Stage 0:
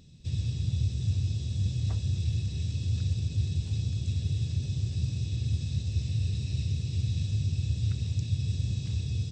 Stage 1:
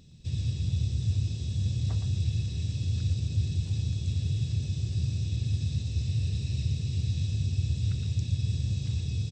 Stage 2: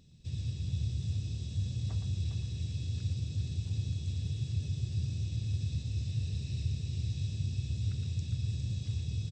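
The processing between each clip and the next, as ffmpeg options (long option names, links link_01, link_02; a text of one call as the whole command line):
ffmpeg -i in.wav -af "aecho=1:1:116:0.398" out.wav
ffmpeg -i in.wav -af "aecho=1:1:406:0.422,volume=-6dB" out.wav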